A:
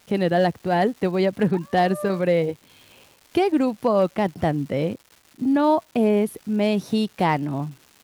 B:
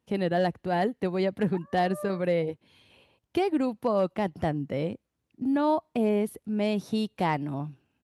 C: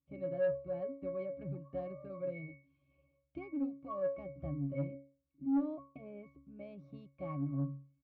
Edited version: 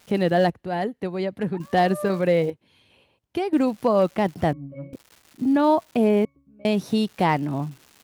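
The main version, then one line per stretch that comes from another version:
A
0:00.50–0:01.60: punch in from B
0:02.50–0:03.53: punch in from B
0:04.53–0:04.93: punch in from C
0:06.25–0:06.65: punch in from C

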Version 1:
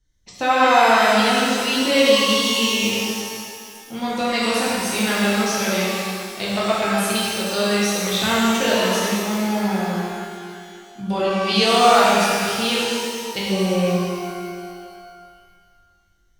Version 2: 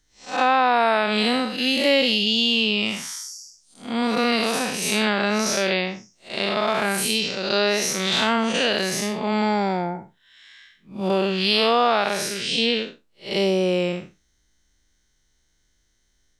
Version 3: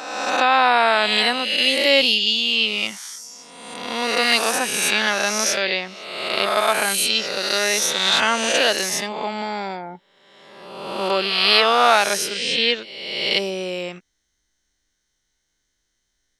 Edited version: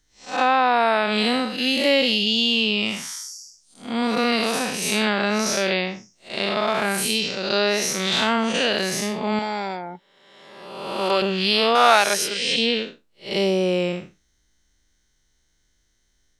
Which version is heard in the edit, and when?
2
0:09.39–0:11.22: punch in from 3
0:11.75–0:12.56: punch in from 3
not used: 1

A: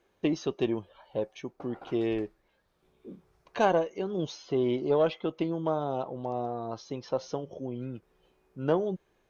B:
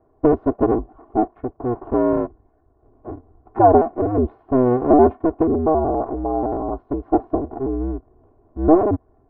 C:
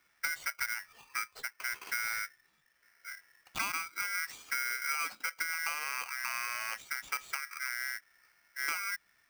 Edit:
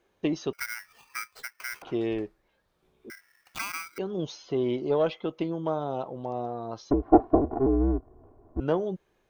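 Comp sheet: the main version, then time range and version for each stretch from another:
A
0:00.53–0:01.82: punch in from C
0:03.10–0:03.98: punch in from C
0:06.91–0:08.60: punch in from B

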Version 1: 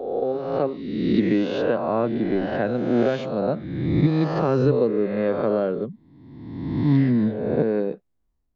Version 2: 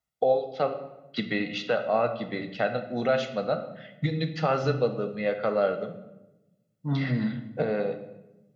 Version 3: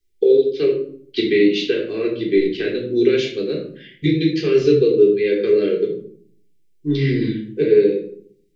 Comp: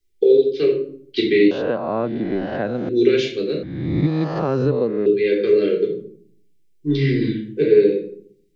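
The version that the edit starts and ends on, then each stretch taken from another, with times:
3
0:01.51–0:02.89: punch in from 1
0:03.63–0:05.06: punch in from 1
not used: 2

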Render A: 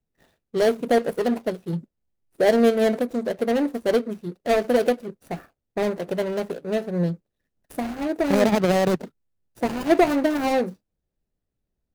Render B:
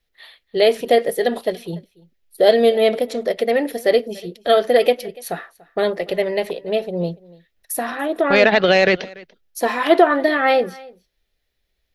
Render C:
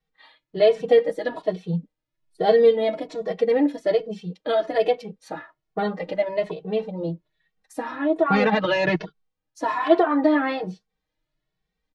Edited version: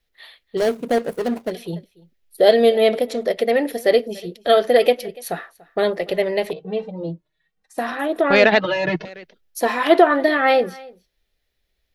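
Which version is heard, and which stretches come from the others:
B
0:00.57–0:01.51: punch in from A
0:06.53–0:07.78: punch in from C
0:08.59–0:09.05: punch in from C

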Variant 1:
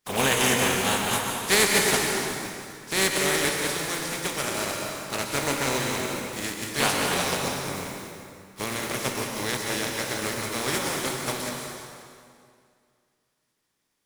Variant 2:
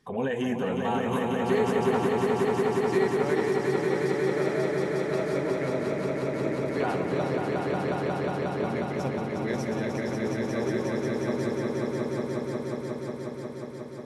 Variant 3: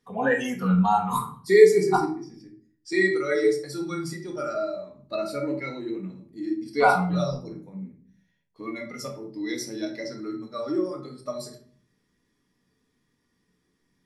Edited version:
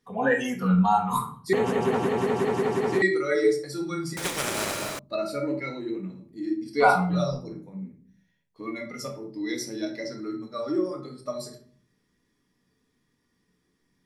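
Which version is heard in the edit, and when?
3
0:01.53–0:03.02: punch in from 2
0:04.17–0:04.99: punch in from 1

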